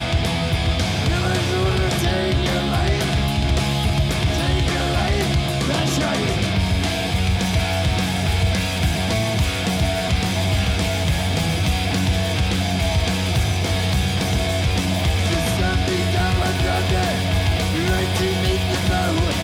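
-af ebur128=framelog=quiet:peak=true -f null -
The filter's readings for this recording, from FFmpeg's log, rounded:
Integrated loudness:
  I:         -20.1 LUFS
  Threshold: -30.1 LUFS
Loudness range:
  LRA:         0.5 LU
  Threshold: -40.1 LUFS
  LRA low:   -20.3 LUFS
  LRA high:  -19.8 LUFS
True peak:
  Peak:       -8.5 dBFS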